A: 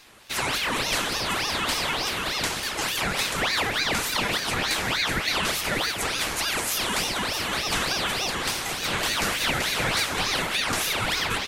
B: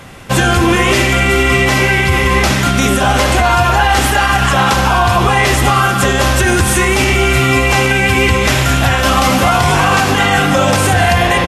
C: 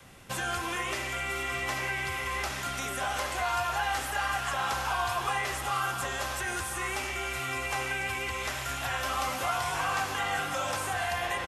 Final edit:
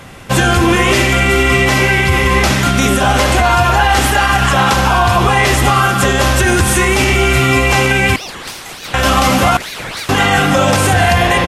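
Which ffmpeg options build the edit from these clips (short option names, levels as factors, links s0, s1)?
-filter_complex "[0:a]asplit=2[s0][s1];[1:a]asplit=3[s2][s3][s4];[s2]atrim=end=8.162[s5];[s0]atrim=start=8.158:end=8.942[s6];[s3]atrim=start=8.938:end=9.572[s7];[s1]atrim=start=9.568:end=10.092[s8];[s4]atrim=start=10.088[s9];[s5][s6]acrossfade=d=0.004:c1=hsin:c2=hsin[s10];[s10][s7]acrossfade=d=0.004:c1=hsin:c2=hsin[s11];[s11][s8]acrossfade=d=0.004:c1=hsin:c2=hsin[s12];[s12][s9]acrossfade=d=0.004:c1=hsin:c2=hsin"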